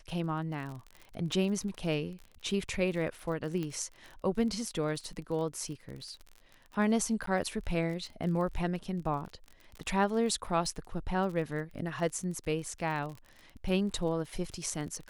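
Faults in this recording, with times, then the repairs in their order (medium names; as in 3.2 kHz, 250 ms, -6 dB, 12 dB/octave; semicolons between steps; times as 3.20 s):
crackle 31 per s -39 dBFS
3.63 s: pop -24 dBFS
7.26–7.27 s: dropout 13 ms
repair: de-click; interpolate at 7.26 s, 13 ms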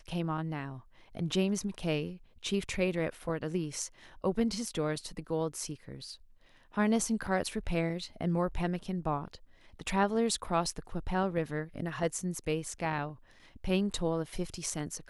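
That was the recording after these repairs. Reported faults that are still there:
nothing left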